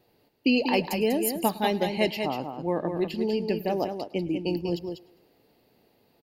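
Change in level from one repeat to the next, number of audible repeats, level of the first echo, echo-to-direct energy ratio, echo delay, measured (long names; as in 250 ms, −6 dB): repeats not evenly spaced, 4, −22.0 dB, −6.5 dB, 104 ms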